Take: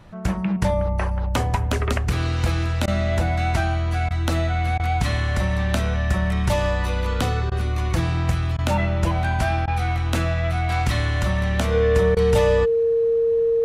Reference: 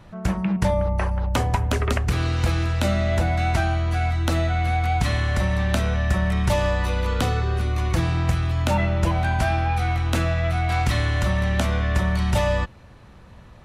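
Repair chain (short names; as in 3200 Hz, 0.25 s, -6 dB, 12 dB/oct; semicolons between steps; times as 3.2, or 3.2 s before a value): clip repair -8 dBFS; notch 460 Hz, Q 30; interpolate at 2.86/4.09/4.78/7.5/8.57/9.66/12.15, 15 ms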